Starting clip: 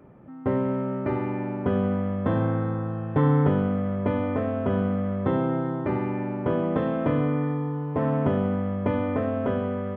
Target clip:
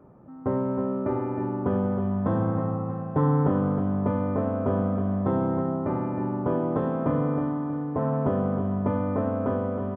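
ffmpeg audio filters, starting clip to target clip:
-af "highshelf=f=1600:t=q:w=1.5:g=-8.5,aecho=1:1:317|634|951|1268|1585:0.422|0.177|0.0744|0.0312|0.0131,volume=0.794"

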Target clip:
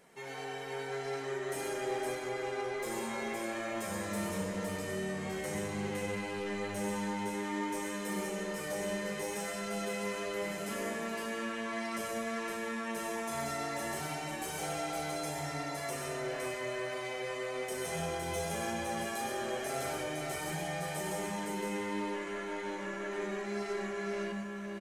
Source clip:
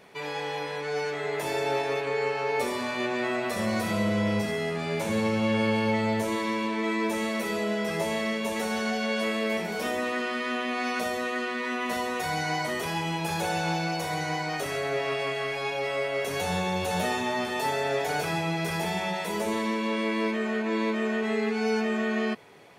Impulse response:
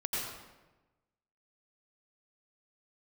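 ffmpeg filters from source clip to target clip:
-filter_complex "[0:a]highshelf=f=6100:t=q:w=1.5:g=7,asoftclip=type=tanh:threshold=0.0708,flanger=delay=3.8:depth=5.2:regen=-45:speed=0.68:shape=sinusoidal,asetrate=40517,aresample=44100,asplit=2[s0][s1];[s1]aecho=0:1:97|122|512:0.422|0.447|0.668[s2];[s0][s2]amix=inputs=2:normalize=0,volume=0.562"

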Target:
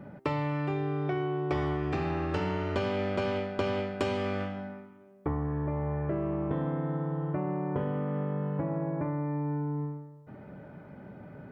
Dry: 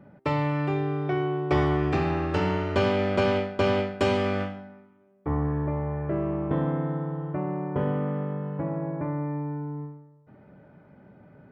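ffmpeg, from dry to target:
-af "acompressor=threshold=0.0178:ratio=4,volume=1.88"

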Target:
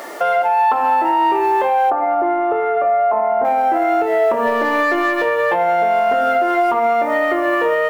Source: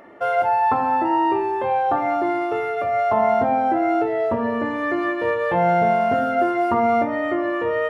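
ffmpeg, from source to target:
-filter_complex "[0:a]acrusher=bits=8:mix=0:aa=0.000001,highpass=450,acompressor=threshold=0.0794:ratio=6,asettb=1/sr,asplit=3[s0][s1][s2];[s0]atrim=end=4.474[s3];[s1]atrim=start=4.47:end=5.25,asetpts=PTS-STARTPTS,afade=t=in:d=0.004:c=qsin,afade=t=out:st=0.776:d=0.004:c=qsin,aeval=exprs='0.168*(cos(1*acos(clip(val(0)/0.168,-1,1)))-cos(1*PI/2))+0.00299*(cos(6*acos(clip(val(0)/0.168,-1,1)))-cos(6*PI/2))+0.00596*(cos(8*acos(clip(val(0)/0.168,-1,1)))-cos(8*PI/2))':c=same[s4];[s2]atrim=start=5.246[s5];[s3][s4]acrossfade=d=0.004:c1=hsin:c2=qsin[s6];[s6][s5]acrossfade=d=0.004:c1=qsin:c2=hsin,acontrast=90,alimiter=limit=0.15:level=0:latency=1:release=379,asoftclip=type=tanh:threshold=0.224,asettb=1/sr,asplit=3[s7][s8][s9];[s7]atrim=end=1.904[s10];[s8]atrim=start=1.9:end=3.45,asetpts=PTS-STARTPTS,afade=t=in:d=0.004:c=qsin,afade=t=out:st=1.546:d=0.004:c=qsin,lowpass=1300[s11];[s9]atrim=start=3.446[s12];[s10][s11]acrossfade=d=0.004:c1=hsin:c2=qsin[s13];[s13][s12]acrossfade=d=0.004:c1=qsin:c2=hsin,volume=2.66"

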